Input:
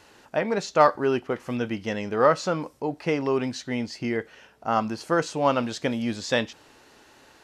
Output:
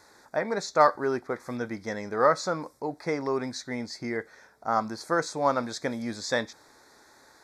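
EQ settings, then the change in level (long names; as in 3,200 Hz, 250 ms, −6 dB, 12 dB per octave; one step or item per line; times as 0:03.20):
Butterworth band-reject 2,900 Hz, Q 2.2
low-shelf EQ 490 Hz −7 dB
parametric band 2,500 Hz −4 dB 0.4 octaves
0.0 dB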